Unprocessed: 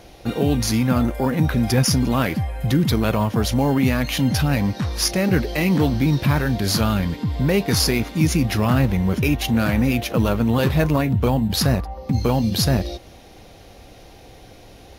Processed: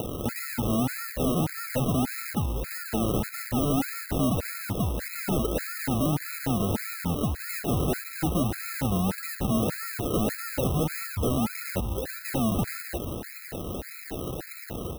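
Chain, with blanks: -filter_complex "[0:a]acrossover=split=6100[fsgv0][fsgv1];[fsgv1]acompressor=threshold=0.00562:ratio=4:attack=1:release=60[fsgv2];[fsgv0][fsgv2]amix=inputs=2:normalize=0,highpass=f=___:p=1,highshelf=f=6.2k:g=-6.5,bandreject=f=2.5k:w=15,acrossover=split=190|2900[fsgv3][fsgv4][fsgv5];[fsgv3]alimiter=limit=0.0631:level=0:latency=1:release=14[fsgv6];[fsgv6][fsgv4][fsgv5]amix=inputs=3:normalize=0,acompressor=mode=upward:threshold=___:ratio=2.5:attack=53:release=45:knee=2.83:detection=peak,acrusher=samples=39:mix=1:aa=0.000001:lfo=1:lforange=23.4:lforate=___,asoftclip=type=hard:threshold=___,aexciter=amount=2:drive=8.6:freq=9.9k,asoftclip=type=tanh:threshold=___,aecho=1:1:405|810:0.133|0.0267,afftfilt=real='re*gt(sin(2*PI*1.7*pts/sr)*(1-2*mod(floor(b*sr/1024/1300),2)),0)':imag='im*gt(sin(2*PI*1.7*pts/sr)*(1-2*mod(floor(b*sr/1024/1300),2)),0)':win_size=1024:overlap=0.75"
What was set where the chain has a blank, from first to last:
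81, 0.0447, 1.7, 0.106, 0.133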